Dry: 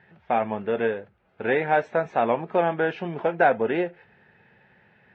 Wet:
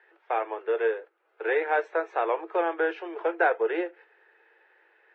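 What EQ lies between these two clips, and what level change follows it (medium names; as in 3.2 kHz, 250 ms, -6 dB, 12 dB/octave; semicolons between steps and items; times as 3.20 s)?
rippled Chebyshev high-pass 320 Hz, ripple 6 dB; 0.0 dB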